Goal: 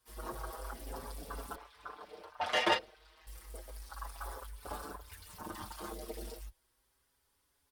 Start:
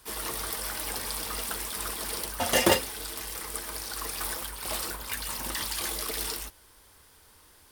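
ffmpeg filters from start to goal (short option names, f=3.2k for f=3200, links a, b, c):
-filter_complex "[0:a]afwtdn=0.02,asettb=1/sr,asplit=3[a][b][c];[a]atrim=end=1.554[d];[b]atrim=start=1.55:end=3.27,asetpts=PTS-STARTPTS,afade=t=in:d=0.004:c=qsin,afade=t=out:st=1.716:d=0.004:c=qsin,acrossover=split=490 4300:gain=0.158 1 0.0794[e][f][g];[e][f][g]amix=inputs=3:normalize=0[h];[c]atrim=start=3.266[i];[d][h]acrossfade=d=0.004:c1=hsin:c2=qsin[j];[j][i]acrossfade=d=0.004:c1=qsin:c2=hsin,asplit=2[k][l];[l]adelay=5.9,afreqshift=0.32[m];[k][m]amix=inputs=2:normalize=1"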